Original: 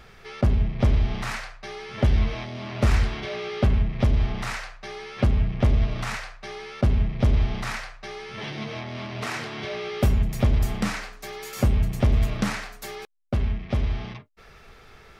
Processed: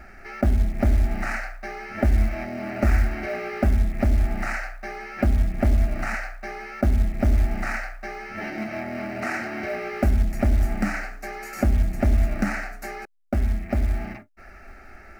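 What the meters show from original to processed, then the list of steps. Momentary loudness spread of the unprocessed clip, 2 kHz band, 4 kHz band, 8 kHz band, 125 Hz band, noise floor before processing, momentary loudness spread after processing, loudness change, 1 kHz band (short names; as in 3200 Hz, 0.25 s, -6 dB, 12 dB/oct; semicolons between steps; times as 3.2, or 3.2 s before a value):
14 LU, +3.5 dB, -9.0 dB, -3.0 dB, -1.0 dB, -50 dBFS, 12 LU, 0.0 dB, +2.0 dB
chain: in parallel at 0 dB: compressor 20:1, threshold -27 dBFS, peak gain reduction 13 dB; on the sum: high shelf 4900 Hz -12 dB; fixed phaser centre 690 Hz, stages 8; short-mantissa float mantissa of 4-bit; gain +1.5 dB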